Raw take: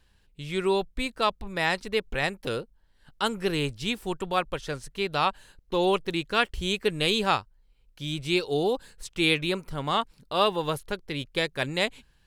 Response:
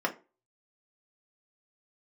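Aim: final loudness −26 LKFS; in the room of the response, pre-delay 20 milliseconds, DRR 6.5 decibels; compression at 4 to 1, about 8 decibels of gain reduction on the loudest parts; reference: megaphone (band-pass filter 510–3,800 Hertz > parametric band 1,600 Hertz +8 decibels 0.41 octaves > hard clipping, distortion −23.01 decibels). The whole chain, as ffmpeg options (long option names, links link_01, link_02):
-filter_complex "[0:a]acompressor=threshold=-28dB:ratio=4,asplit=2[link_01][link_02];[1:a]atrim=start_sample=2205,adelay=20[link_03];[link_02][link_03]afir=irnorm=-1:irlink=0,volume=-15.5dB[link_04];[link_01][link_04]amix=inputs=2:normalize=0,highpass=510,lowpass=3800,equalizer=frequency=1600:width_type=o:width=0.41:gain=8,asoftclip=type=hard:threshold=-19dB,volume=8dB"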